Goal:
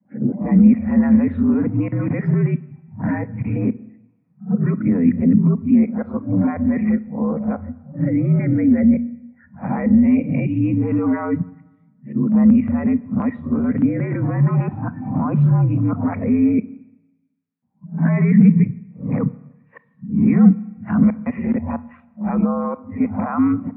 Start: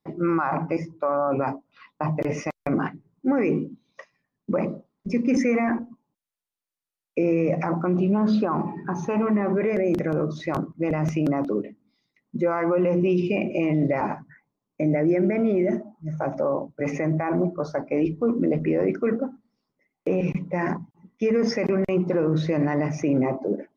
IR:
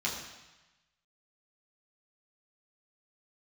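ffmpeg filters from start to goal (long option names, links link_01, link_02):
-filter_complex "[0:a]areverse,highpass=frequency=210:width_type=q:width=0.5412,highpass=frequency=210:width_type=q:width=1.307,lowpass=frequency=2400:width_type=q:width=0.5176,lowpass=frequency=2400:width_type=q:width=0.7071,lowpass=frequency=2400:width_type=q:width=1.932,afreqshift=-68,lowshelf=frequency=290:width_type=q:width=3:gain=7,asplit=2[link_01][link_02];[1:a]atrim=start_sample=2205,adelay=27[link_03];[link_02][link_03]afir=irnorm=-1:irlink=0,volume=-22dB[link_04];[link_01][link_04]amix=inputs=2:normalize=0"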